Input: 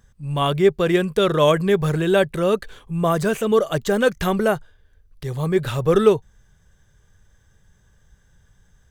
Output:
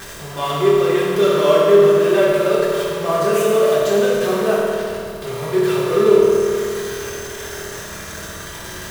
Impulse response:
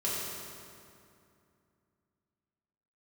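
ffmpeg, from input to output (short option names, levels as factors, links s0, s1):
-filter_complex "[0:a]aeval=exprs='val(0)+0.5*0.133*sgn(val(0))':c=same,bass=f=250:g=-13,treble=f=4000:g=-2[s0];[1:a]atrim=start_sample=2205[s1];[s0][s1]afir=irnorm=-1:irlink=0,volume=0.398"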